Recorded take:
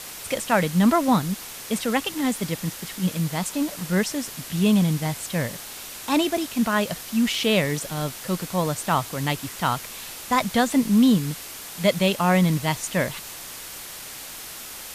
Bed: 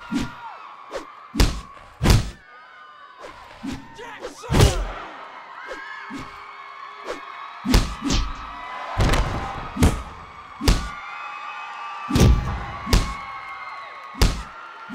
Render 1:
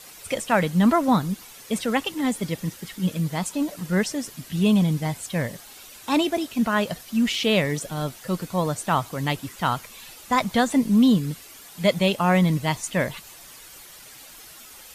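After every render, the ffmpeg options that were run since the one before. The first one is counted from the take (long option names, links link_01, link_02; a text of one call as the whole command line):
ffmpeg -i in.wav -af "afftdn=noise_reduction=10:noise_floor=-38" out.wav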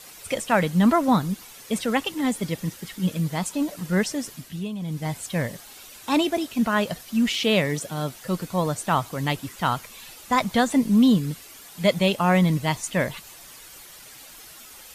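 ffmpeg -i in.wav -filter_complex "[0:a]asettb=1/sr,asplit=3[link_01][link_02][link_03];[link_01]atrim=end=7.314[link_04];[link_02]atrim=start=7.31:end=8.15,asetpts=PTS-STARTPTS,afade=type=in:duration=0.004:curve=qsin,afade=type=out:start_time=0.836:duration=0.004:curve=qsin,highpass=89[link_05];[link_03]atrim=start=8.146[link_06];[link_04][link_05]acrossfade=duration=0.004:curve1=hsin:curve2=qsin[link_07];[link_07][link_06]acrossfade=duration=0.004:curve1=qsin:curve2=hsin,asplit=3[link_08][link_09][link_10];[link_08]atrim=end=4.69,asetpts=PTS-STARTPTS,afade=type=out:start_time=4.32:duration=0.37:silence=0.199526[link_11];[link_09]atrim=start=4.69:end=4.79,asetpts=PTS-STARTPTS,volume=-14dB[link_12];[link_10]atrim=start=4.79,asetpts=PTS-STARTPTS,afade=type=in:duration=0.37:silence=0.199526[link_13];[link_11][link_12][link_13]concat=n=3:v=0:a=1" out.wav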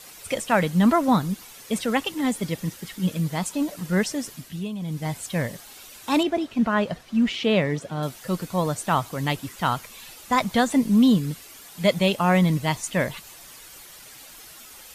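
ffmpeg -i in.wav -filter_complex "[0:a]asettb=1/sr,asplit=3[link_01][link_02][link_03];[link_01]atrim=end=6.234[link_04];[link_02]atrim=start=6.23:end=8.03,asetpts=PTS-STARTPTS,afade=type=in:duration=0.004:curve=qsin,afade=type=out:start_time=1.796:duration=0.004:curve=qsin,aemphasis=mode=reproduction:type=75fm[link_05];[link_03]atrim=start=8.026[link_06];[link_04][link_05]acrossfade=duration=0.004:curve1=hsin:curve2=qsin[link_07];[link_07][link_06]acrossfade=duration=0.004:curve1=qsin:curve2=hsin" out.wav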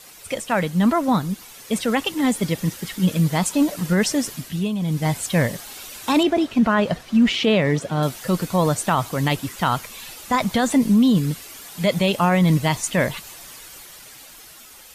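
ffmpeg -i in.wav -af "dynaudnorm=framelen=410:gausssize=9:maxgain=9dB,alimiter=limit=-9.5dB:level=0:latency=1:release=30" out.wav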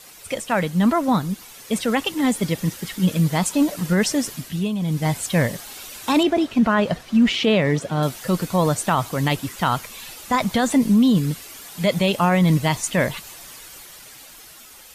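ffmpeg -i in.wav -af anull out.wav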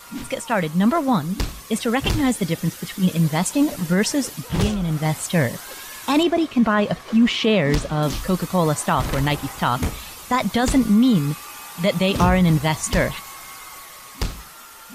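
ffmpeg -i in.wav -i bed.wav -filter_complex "[1:a]volume=-7.5dB[link_01];[0:a][link_01]amix=inputs=2:normalize=0" out.wav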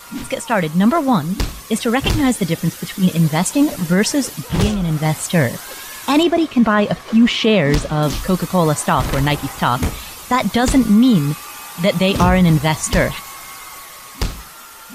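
ffmpeg -i in.wav -af "volume=4dB,alimiter=limit=-3dB:level=0:latency=1" out.wav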